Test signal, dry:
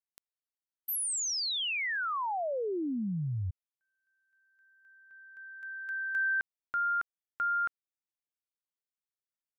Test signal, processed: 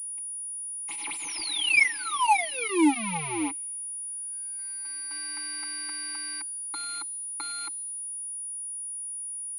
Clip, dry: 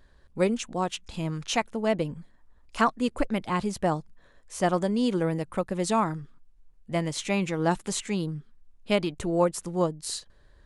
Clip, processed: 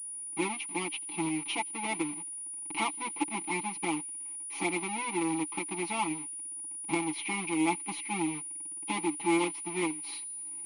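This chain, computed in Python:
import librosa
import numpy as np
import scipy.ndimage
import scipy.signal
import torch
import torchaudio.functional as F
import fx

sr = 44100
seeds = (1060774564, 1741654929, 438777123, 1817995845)

y = fx.halfwave_hold(x, sr)
y = fx.recorder_agc(y, sr, target_db=-15.5, rise_db_per_s=16.0, max_gain_db=34)
y = fx.vowel_filter(y, sr, vowel='u')
y = fx.tilt_eq(y, sr, slope=3.5)
y = y + 0.99 * np.pad(y, (int(6.0 * sr / 1000.0), 0))[:len(y)]
y = fx.echo_wet_highpass(y, sr, ms=84, feedback_pct=71, hz=3800.0, wet_db=-23)
y = fx.pwm(y, sr, carrier_hz=9700.0)
y = y * 10.0 ** (1.5 / 20.0)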